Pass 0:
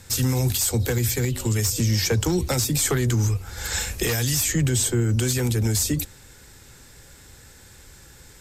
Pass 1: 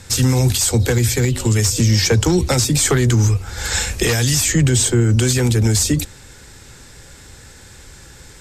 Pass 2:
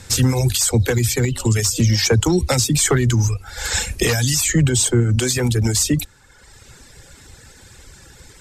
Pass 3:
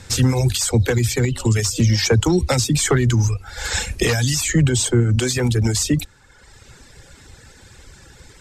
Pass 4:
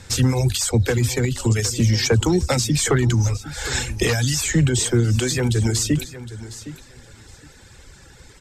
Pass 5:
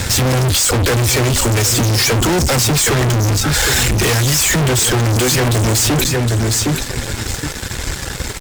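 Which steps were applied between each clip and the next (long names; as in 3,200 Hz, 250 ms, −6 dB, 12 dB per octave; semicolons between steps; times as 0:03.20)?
low-pass filter 9,700 Hz 12 dB per octave; level +7 dB
reverb reduction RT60 1.1 s
high-shelf EQ 9,200 Hz −9.5 dB
repeating echo 762 ms, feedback 18%, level −15 dB; level −1.5 dB
fuzz pedal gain 41 dB, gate −48 dBFS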